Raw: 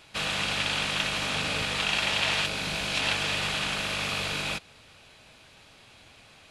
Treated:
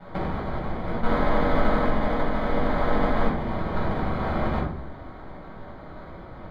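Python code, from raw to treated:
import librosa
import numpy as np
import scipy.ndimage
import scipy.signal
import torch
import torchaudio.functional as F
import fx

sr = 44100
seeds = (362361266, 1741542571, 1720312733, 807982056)

y = fx.chord_vocoder(x, sr, chord='bare fifth', root=51, at=(1.02, 3.27))
y = scipy.signal.sosfilt(scipy.signal.butter(2, 810.0, 'highpass', fs=sr, output='sos'), y)
y = fx.high_shelf(y, sr, hz=2700.0, db=8.0)
y = fx.notch(y, sr, hz=4400.0, q=6.1)
y = fx.over_compress(y, sr, threshold_db=-31.0, ratio=-0.5)
y = y * np.sin(2.0 * np.pi * 110.0 * np.arange(len(y)) / sr)
y = fx.sample_hold(y, sr, seeds[0], rate_hz=2700.0, jitter_pct=0)
y = fx.air_absorb(y, sr, metres=410.0)
y = fx.room_shoebox(y, sr, seeds[1], volume_m3=560.0, walls='furnished', distance_m=7.3)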